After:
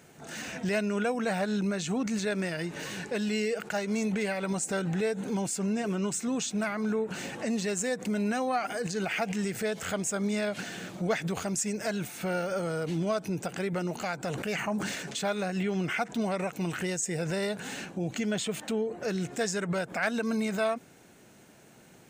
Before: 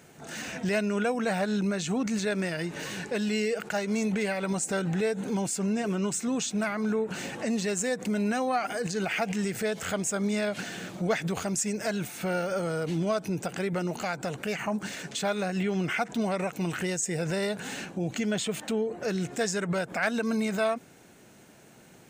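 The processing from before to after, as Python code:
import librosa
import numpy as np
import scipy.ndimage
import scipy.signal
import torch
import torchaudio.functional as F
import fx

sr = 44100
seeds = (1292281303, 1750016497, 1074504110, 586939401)

y = fx.sustainer(x, sr, db_per_s=37.0, at=(14.22, 15.18))
y = F.gain(torch.from_numpy(y), -1.5).numpy()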